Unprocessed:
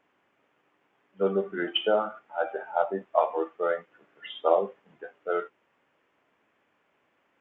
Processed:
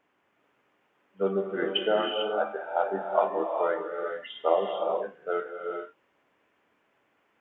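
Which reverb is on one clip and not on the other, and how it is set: non-linear reverb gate 0.47 s rising, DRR 2 dB; gain -1.5 dB

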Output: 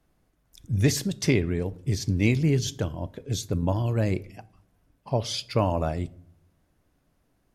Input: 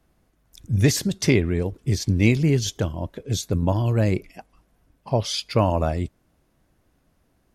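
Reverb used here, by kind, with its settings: shoebox room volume 890 m³, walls furnished, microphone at 0.35 m; gain -4 dB

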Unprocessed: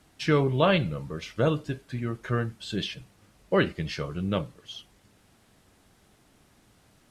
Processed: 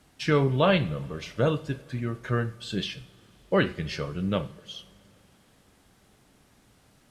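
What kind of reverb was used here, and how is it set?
two-slope reverb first 0.48 s, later 3.8 s, from -20 dB, DRR 12 dB

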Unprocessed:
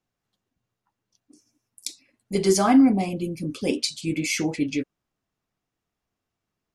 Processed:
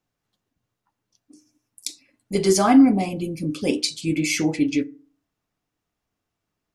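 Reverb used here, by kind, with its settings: FDN reverb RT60 0.4 s, low-frequency decay 1.2×, high-frequency decay 0.5×, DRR 14.5 dB; gain +2 dB

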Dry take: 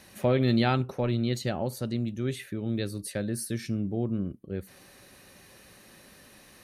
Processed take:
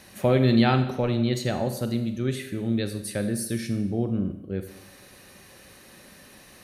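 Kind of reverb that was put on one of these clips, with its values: Schroeder reverb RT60 0.85 s, combs from 31 ms, DRR 8 dB; gain +3 dB

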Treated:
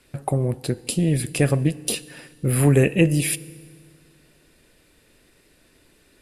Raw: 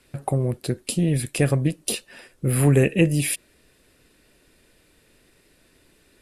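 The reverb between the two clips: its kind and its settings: FDN reverb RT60 1.8 s, low-frequency decay 1.25×, high-frequency decay 0.95×, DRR 18 dB; gain +1 dB

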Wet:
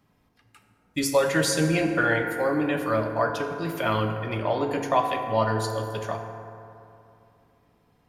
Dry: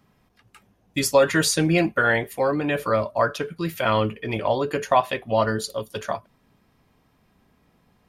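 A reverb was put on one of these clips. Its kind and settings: FDN reverb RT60 2.7 s, high-frequency decay 0.4×, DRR 3.5 dB; gain -4.5 dB

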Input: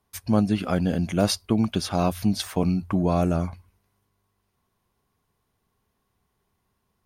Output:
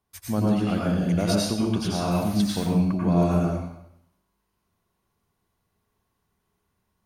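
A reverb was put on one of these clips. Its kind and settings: plate-style reverb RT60 0.76 s, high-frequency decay 0.9×, pre-delay 80 ms, DRR -4 dB; gain -6 dB

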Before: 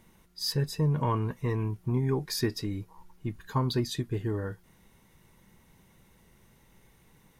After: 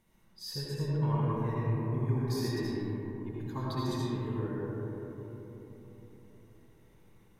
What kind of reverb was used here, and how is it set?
digital reverb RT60 4.2 s, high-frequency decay 0.25×, pre-delay 40 ms, DRR -7 dB; gain -11.5 dB

